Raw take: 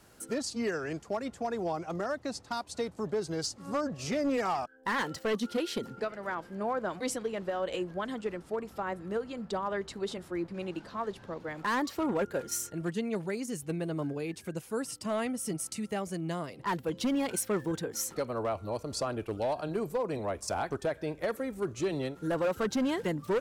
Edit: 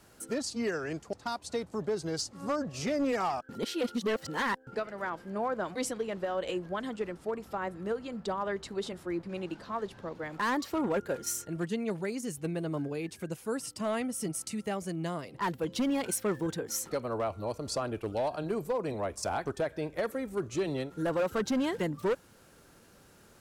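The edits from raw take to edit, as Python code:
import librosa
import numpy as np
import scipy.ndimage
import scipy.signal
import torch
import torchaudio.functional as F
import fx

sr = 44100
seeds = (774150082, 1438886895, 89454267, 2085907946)

y = fx.edit(x, sr, fx.cut(start_s=1.13, length_s=1.25),
    fx.reverse_span(start_s=4.74, length_s=1.18), tone=tone)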